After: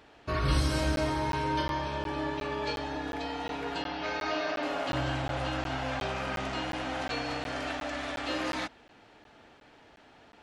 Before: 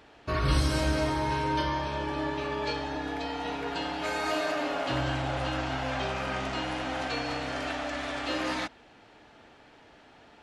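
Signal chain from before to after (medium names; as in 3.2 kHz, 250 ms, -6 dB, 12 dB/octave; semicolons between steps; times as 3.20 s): 3.82–4.63 s: elliptic low-pass 5.8 kHz, stop band 50 dB; crackling interface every 0.36 s, samples 512, zero, from 0.96 s; trim -1.5 dB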